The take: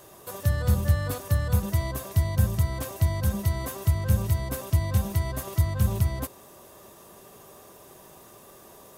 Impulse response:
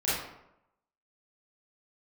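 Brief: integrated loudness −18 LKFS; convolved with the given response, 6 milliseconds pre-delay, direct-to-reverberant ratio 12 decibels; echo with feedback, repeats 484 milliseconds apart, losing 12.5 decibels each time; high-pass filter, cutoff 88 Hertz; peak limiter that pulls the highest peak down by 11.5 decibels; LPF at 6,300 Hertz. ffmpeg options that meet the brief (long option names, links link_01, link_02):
-filter_complex "[0:a]highpass=88,lowpass=6300,alimiter=level_in=0.5dB:limit=-24dB:level=0:latency=1,volume=-0.5dB,aecho=1:1:484|968|1452:0.237|0.0569|0.0137,asplit=2[link_01][link_02];[1:a]atrim=start_sample=2205,adelay=6[link_03];[link_02][link_03]afir=irnorm=-1:irlink=0,volume=-22dB[link_04];[link_01][link_04]amix=inputs=2:normalize=0,volume=16dB"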